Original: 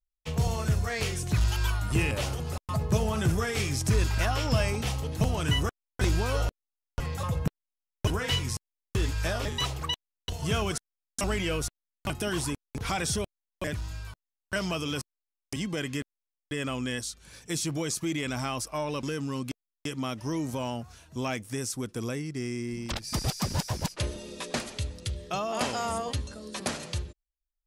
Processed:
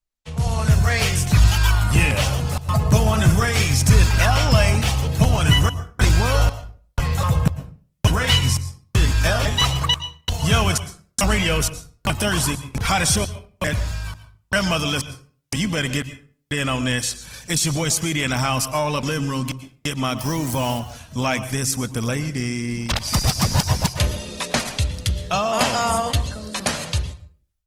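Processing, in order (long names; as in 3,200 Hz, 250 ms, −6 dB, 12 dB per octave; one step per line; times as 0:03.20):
0:20.19–0:20.80: spike at every zero crossing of −35.5 dBFS
parametric band 360 Hz −9.5 dB 0.77 octaves
automatic gain control gain up to 11.5 dB
convolution reverb RT60 0.40 s, pre-delay 107 ms, DRR 13.5 dB
Opus 20 kbit/s 48,000 Hz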